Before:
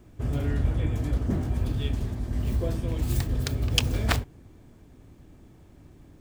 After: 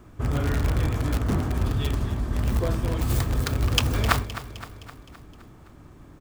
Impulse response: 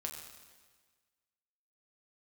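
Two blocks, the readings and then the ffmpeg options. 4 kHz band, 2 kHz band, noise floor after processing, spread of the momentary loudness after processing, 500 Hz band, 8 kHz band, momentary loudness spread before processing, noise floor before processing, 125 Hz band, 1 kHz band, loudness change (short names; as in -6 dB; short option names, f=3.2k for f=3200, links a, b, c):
+1.5 dB, +4.5 dB, -49 dBFS, 14 LU, +4.0 dB, +3.0 dB, 5 LU, -53 dBFS, +2.5 dB, +8.5 dB, +2.5 dB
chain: -filter_complex "[0:a]equalizer=f=1.2k:w=1.7:g=9.5,asplit=2[a][b];[b]aeval=exprs='(mod(9.44*val(0)+1,2)-1)/9.44':c=same,volume=-8dB[c];[a][c]amix=inputs=2:normalize=0,aecho=1:1:259|518|777|1036|1295|1554:0.211|0.12|0.0687|0.0391|0.0223|0.0127"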